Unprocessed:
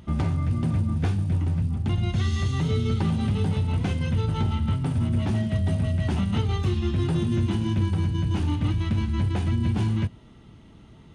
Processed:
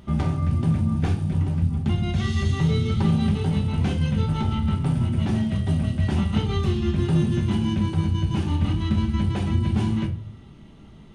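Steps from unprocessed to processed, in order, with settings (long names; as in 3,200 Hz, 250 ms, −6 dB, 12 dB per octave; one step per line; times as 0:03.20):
rectangular room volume 290 cubic metres, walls furnished, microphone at 1.2 metres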